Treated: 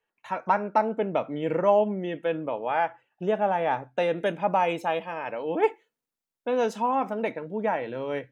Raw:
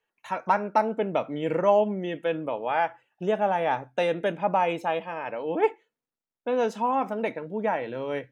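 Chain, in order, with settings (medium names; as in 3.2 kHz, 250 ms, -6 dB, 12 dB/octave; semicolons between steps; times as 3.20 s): treble shelf 4.8 kHz -8.5 dB, from 4.18 s +4 dB, from 6.86 s -2.5 dB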